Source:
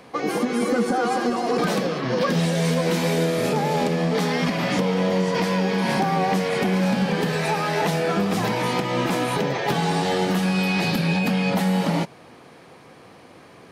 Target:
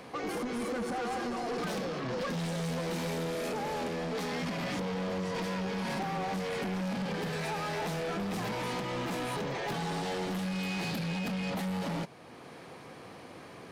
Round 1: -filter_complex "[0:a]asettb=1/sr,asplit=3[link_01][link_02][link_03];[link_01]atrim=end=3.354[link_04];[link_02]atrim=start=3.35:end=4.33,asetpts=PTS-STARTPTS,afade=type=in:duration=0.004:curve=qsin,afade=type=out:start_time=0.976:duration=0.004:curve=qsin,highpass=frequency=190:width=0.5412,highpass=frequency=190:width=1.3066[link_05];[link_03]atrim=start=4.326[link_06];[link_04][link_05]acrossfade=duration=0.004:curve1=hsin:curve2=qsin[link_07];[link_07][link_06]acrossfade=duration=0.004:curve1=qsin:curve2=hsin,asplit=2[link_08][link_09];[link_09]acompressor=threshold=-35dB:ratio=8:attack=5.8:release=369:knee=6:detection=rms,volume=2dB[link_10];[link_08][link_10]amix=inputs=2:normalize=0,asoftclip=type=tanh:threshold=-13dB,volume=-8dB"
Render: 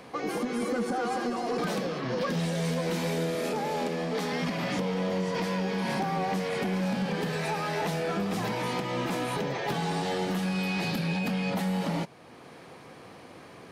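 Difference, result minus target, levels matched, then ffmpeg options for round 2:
soft clipping: distortion −12 dB
-filter_complex "[0:a]asettb=1/sr,asplit=3[link_01][link_02][link_03];[link_01]atrim=end=3.354[link_04];[link_02]atrim=start=3.35:end=4.33,asetpts=PTS-STARTPTS,afade=type=in:duration=0.004:curve=qsin,afade=type=out:start_time=0.976:duration=0.004:curve=qsin,highpass=frequency=190:width=0.5412,highpass=frequency=190:width=1.3066[link_05];[link_03]atrim=start=4.326[link_06];[link_04][link_05]acrossfade=duration=0.004:curve1=hsin:curve2=qsin[link_07];[link_07][link_06]acrossfade=duration=0.004:curve1=qsin:curve2=hsin,asplit=2[link_08][link_09];[link_09]acompressor=threshold=-35dB:ratio=8:attack=5.8:release=369:knee=6:detection=rms,volume=2dB[link_10];[link_08][link_10]amix=inputs=2:normalize=0,asoftclip=type=tanh:threshold=-23dB,volume=-8dB"

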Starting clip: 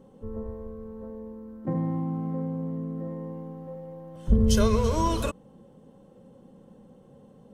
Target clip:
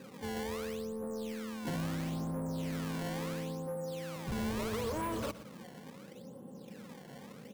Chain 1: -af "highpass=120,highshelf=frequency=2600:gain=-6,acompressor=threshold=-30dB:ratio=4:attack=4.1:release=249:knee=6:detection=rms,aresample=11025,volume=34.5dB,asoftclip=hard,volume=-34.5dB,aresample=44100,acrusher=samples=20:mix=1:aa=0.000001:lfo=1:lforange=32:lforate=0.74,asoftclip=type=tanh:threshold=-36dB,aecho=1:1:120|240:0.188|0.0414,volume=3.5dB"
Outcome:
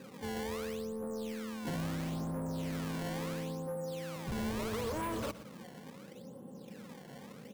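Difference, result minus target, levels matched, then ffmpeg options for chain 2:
gain into a clipping stage and back: distortion +30 dB
-af "highpass=120,highshelf=frequency=2600:gain=-6,acompressor=threshold=-30dB:ratio=4:attack=4.1:release=249:knee=6:detection=rms,aresample=11025,volume=25dB,asoftclip=hard,volume=-25dB,aresample=44100,acrusher=samples=20:mix=1:aa=0.000001:lfo=1:lforange=32:lforate=0.74,asoftclip=type=tanh:threshold=-36dB,aecho=1:1:120|240:0.188|0.0414,volume=3.5dB"

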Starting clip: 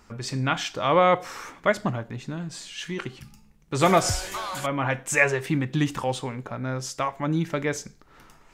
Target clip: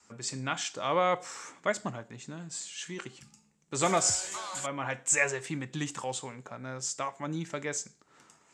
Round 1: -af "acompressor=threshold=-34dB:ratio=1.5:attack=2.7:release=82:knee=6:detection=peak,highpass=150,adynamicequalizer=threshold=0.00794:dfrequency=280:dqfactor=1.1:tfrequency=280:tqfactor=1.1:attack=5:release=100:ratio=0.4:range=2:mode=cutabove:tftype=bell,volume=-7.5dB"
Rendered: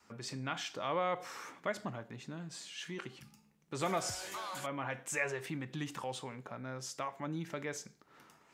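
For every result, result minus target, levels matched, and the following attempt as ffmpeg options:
downward compressor: peak gain reduction +8 dB; 8,000 Hz band −6.0 dB
-af "highpass=150,adynamicequalizer=threshold=0.00794:dfrequency=280:dqfactor=1.1:tfrequency=280:tqfactor=1.1:attack=5:release=100:ratio=0.4:range=2:mode=cutabove:tftype=bell,volume=-7.5dB"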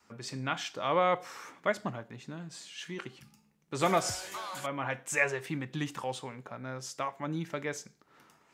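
8,000 Hz band −8.0 dB
-af "highpass=150,adynamicequalizer=threshold=0.00794:dfrequency=280:dqfactor=1.1:tfrequency=280:tqfactor=1.1:attack=5:release=100:ratio=0.4:range=2:mode=cutabove:tftype=bell,lowpass=frequency=7600:width_type=q:width=4.7,volume=-7.5dB"

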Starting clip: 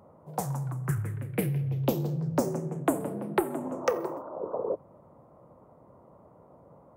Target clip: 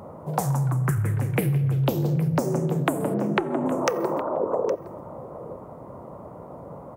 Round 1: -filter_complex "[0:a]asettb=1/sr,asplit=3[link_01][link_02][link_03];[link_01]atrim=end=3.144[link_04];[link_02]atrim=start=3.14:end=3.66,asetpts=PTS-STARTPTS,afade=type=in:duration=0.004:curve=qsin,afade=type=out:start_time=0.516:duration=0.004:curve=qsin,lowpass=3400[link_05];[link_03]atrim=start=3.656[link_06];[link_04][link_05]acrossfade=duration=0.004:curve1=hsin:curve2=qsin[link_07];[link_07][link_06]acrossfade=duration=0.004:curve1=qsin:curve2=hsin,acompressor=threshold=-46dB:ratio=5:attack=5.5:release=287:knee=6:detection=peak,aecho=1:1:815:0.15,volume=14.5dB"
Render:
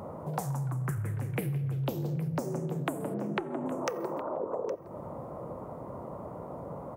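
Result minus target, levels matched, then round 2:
downward compressor: peak gain reduction +9 dB
-filter_complex "[0:a]asettb=1/sr,asplit=3[link_01][link_02][link_03];[link_01]atrim=end=3.144[link_04];[link_02]atrim=start=3.14:end=3.66,asetpts=PTS-STARTPTS,afade=type=in:duration=0.004:curve=qsin,afade=type=out:start_time=0.516:duration=0.004:curve=qsin,lowpass=3400[link_05];[link_03]atrim=start=3.656[link_06];[link_04][link_05]acrossfade=duration=0.004:curve1=hsin:curve2=qsin[link_07];[link_07][link_06]acrossfade=duration=0.004:curve1=qsin:curve2=hsin,acompressor=threshold=-34.5dB:ratio=5:attack=5.5:release=287:knee=6:detection=peak,aecho=1:1:815:0.15,volume=14.5dB"

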